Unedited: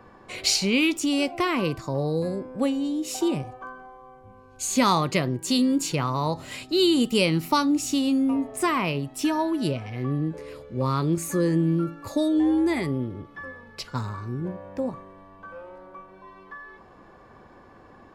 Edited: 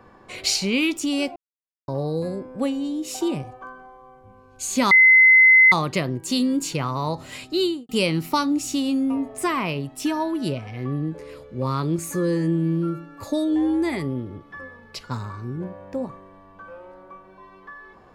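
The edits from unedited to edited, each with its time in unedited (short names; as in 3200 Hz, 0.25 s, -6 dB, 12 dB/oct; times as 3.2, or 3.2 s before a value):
1.36–1.88 mute
4.91 add tone 2050 Hz -9 dBFS 0.81 s
6.75–7.08 studio fade out
11.34–12.04 stretch 1.5×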